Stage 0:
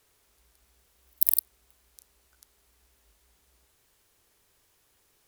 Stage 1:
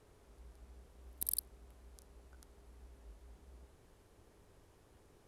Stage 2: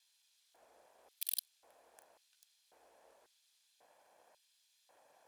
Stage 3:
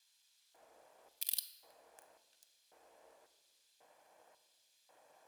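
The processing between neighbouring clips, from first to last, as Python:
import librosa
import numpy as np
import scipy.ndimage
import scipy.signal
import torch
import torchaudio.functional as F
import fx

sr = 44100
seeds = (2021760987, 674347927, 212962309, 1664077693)

y1 = scipy.signal.sosfilt(scipy.signal.butter(4, 12000.0, 'lowpass', fs=sr, output='sos'), x)
y1 = fx.tilt_shelf(y1, sr, db=10.0, hz=1200.0)
y1 = y1 * 10.0 ** (2.5 / 20.0)
y2 = fx.lower_of_two(y1, sr, delay_ms=1.2)
y2 = fx.filter_lfo_highpass(y2, sr, shape='square', hz=0.92, low_hz=560.0, high_hz=3700.0, q=2.1)
y3 = fx.room_shoebox(y2, sr, seeds[0], volume_m3=780.0, walls='mixed', distance_m=0.55)
y3 = y3 * 10.0 ** (1.0 / 20.0)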